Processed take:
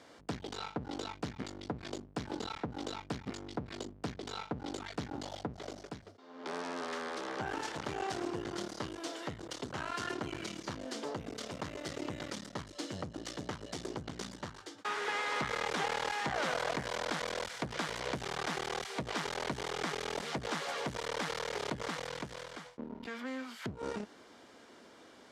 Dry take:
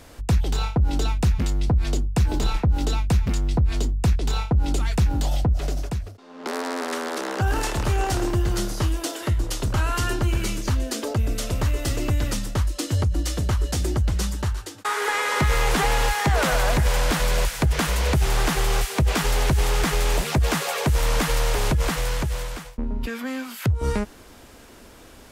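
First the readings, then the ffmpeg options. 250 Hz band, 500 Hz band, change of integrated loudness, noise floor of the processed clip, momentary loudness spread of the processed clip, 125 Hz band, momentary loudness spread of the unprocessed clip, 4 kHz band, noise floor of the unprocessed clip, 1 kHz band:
−13.0 dB, −11.0 dB, −15.0 dB, −57 dBFS, 10 LU, −24.0 dB, 7 LU, −11.0 dB, −46 dBFS, −10.5 dB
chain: -af "bandreject=frequency=2600:width=10,aeval=exprs='clip(val(0),-1,0.0188)':channel_layout=same,highpass=220,lowpass=5600,volume=-7.5dB"

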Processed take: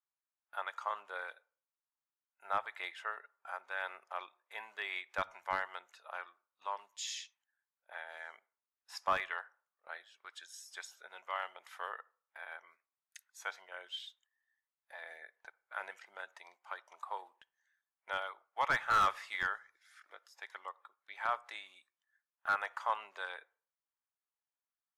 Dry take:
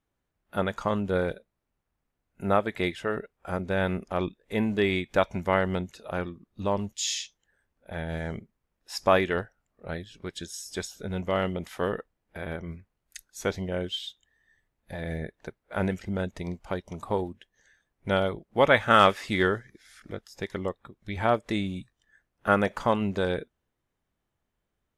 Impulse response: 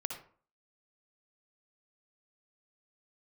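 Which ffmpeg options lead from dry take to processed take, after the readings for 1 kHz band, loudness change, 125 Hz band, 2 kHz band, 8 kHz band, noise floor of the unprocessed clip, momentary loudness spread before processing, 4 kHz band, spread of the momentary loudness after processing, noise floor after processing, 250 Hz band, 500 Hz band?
−8.0 dB, −11.5 dB, −30.5 dB, −7.5 dB, −12.0 dB, −81 dBFS, 16 LU, −11.5 dB, 17 LU, below −85 dBFS, −32.5 dB, −21.0 dB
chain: -filter_complex "[0:a]aphaser=in_gain=1:out_gain=1:delay=1.3:decay=0.21:speed=1:type=sinusoidal,highpass=frequency=1000:width=0.5412,highpass=frequency=1000:width=1.3066,agate=range=-9dB:threshold=-59dB:ratio=16:detection=peak,asoftclip=type=hard:threshold=-19dB,tiltshelf=frequency=1500:gain=7,asplit=2[link_01][link_02];[1:a]atrim=start_sample=2205,lowpass=2300[link_03];[link_02][link_03]afir=irnorm=-1:irlink=0,volume=-19.5dB[link_04];[link_01][link_04]amix=inputs=2:normalize=0,volume=-6dB"

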